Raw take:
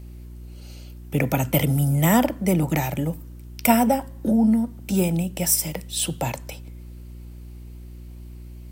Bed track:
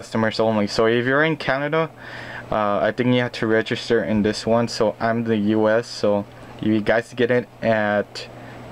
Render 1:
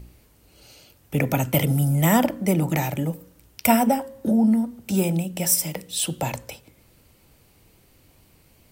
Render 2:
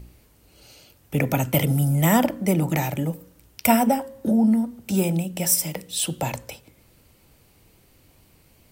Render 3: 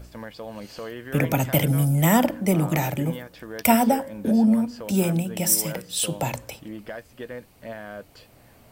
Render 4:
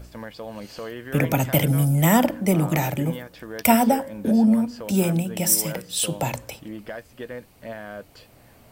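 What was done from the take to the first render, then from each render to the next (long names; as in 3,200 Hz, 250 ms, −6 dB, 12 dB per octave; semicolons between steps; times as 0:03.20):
hum removal 60 Hz, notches 9
no processing that can be heard
mix in bed track −18 dB
level +1 dB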